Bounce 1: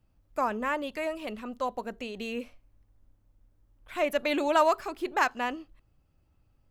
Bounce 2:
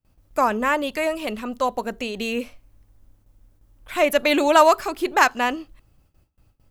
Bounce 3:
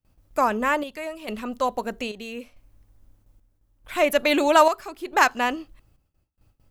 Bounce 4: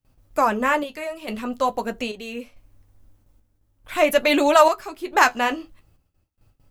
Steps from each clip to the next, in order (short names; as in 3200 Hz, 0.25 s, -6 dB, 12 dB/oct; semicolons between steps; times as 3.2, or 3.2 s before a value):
gate with hold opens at -57 dBFS; high shelf 4900 Hz +6.5 dB; gain +8.5 dB
chopper 0.78 Hz, depth 60%, duty 65%; gain -1.5 dB
flange 0.45 Hz, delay 6.9 ms, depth 7.7 ms, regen -45%; gain +6 dB